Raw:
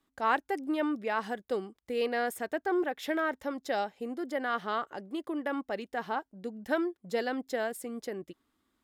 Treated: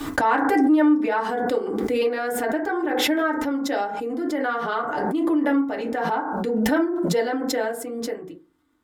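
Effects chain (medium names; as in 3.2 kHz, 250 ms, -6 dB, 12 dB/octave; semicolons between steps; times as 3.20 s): FDN reverb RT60 0.35 s, low-frequency decay 1.1×, high-frequency decay 0.35×, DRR -3.5 dB; swell ahead of each attack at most 21 dB/s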